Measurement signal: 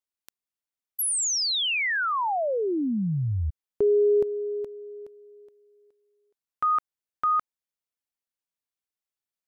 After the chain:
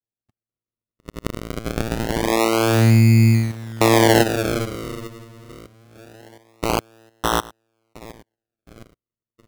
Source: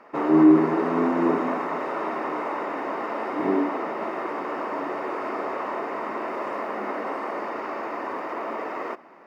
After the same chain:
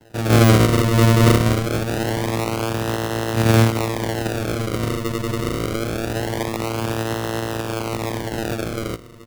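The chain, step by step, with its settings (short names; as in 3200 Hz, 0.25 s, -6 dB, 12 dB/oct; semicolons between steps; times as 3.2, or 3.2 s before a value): AGC gain up to 5.5 dB; on a send: feedback echo 0.715 s, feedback 49%, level -20 dB; on the sum: vocoder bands 4, saw 113 Hz; decimation with a swept rate 37×, swing 100% 0.24 Hz; maximiser +8 dB; gain -4.5 dB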